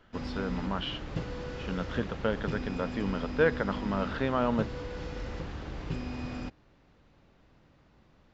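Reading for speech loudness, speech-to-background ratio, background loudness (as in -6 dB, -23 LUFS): -32.5 LUFS, 6.0 dB, -38.5 LUFS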